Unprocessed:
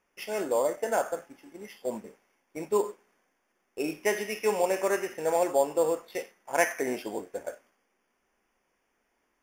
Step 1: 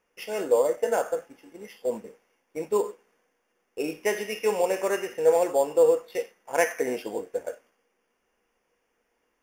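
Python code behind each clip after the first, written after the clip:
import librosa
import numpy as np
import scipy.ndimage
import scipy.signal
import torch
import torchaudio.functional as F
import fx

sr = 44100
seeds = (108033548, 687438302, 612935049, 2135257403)

y = fx.small_body(x, sr, hz=(480.0, 2800.0), ring_ms=100, db=12)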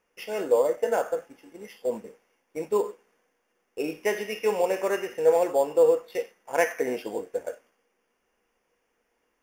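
y = fx.dynamic_eq(x, sr, hz=8800.0, q=0.78, threshold_db=-48.0, ratio=4.0, max_db=-5)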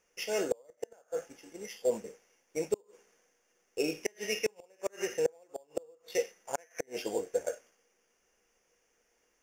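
y = fx.gate_flip(x, sr, shuts_db=-16.0, range_db=-35)
y = fx.graphic_eq_15(y, sr, hz=(250, 1000, 6300), db=(-5, -5, 11))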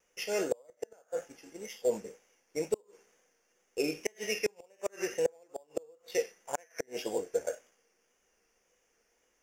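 y = fx.wow_flutter(x, sr, seeds[0], rate_hz=2.1, depth_cents=51.0)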